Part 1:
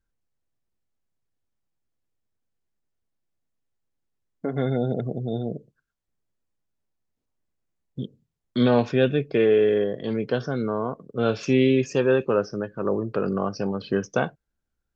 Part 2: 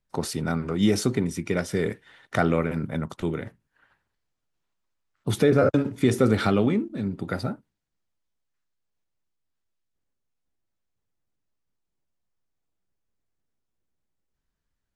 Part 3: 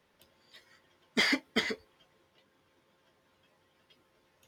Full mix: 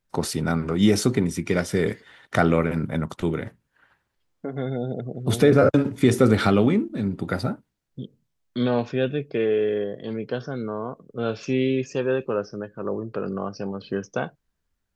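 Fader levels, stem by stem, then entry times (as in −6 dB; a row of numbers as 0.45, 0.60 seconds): −3.5, +3.0, −20.0 decibels; 0.00, 0.00, 0.30 seconds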